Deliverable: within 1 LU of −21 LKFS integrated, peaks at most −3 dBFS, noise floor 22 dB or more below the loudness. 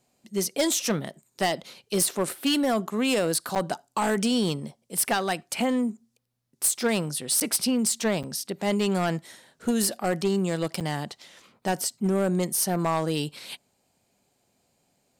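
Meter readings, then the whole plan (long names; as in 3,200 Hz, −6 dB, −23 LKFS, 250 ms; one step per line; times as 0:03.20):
share of clipped samples 1.0%; peaks flattened at −18.0 dBFS; number of dropouts 4; longest dropout 7.8 ms; integrated loudness −26.0 LKFS; sample peak −18.0 dBFS; target loudness −21.0 LKFS
→ clipped peaks rebuilt −18 dBFS
repair the gap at 0:03.55/0:07.40/0:08.23/0:10.80, 7.8 ms
level +5 dB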